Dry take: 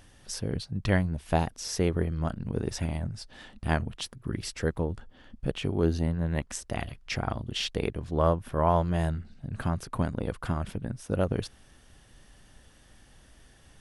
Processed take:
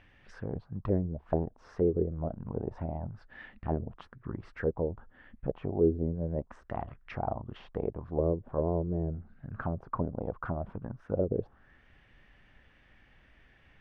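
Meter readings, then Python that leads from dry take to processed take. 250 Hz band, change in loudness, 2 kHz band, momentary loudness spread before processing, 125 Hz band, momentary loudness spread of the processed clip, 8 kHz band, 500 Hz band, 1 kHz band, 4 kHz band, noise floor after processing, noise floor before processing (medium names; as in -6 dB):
-3.0 dB, -3.5 dB, -10.5 dB, 10 LU, -5.5 dB, 13 LU, under -30 dB, -0.5 dB, -7.0 dB, under -20 dB, -62 dBFS, -57 dBFS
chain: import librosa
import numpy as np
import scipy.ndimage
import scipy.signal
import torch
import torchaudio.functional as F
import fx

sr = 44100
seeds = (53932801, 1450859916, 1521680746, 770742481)

y = fx.envelope_lowpass(x, sr, base_hz=410.0, top_hz=2400.0, q=3.1, full_db=-22.0, direction='down')
y = F.gain(torch.from_numpy(y), -6.0).numpy()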